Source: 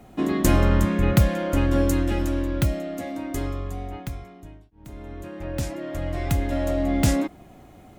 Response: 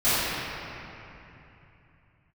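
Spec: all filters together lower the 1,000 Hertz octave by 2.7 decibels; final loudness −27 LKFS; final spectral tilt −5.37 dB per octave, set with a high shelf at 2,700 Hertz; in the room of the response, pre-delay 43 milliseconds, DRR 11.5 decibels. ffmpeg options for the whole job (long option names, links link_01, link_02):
-filter_complex "[0:a]equalizer=frequency=1000:width_type=o:gain=-5,highshelf=frequency=2700:gain=7,asplit=2[link_01][link_02];[1:a]atrim=start_sample=2205,adelay=43[link_03];[link_02][link_03]afir=irnorm=-1:irlink=0,volume=-30.5dB[link_04];[link_01][link_04]amix=inputs=2:normalize=0,volume=-3.5dB"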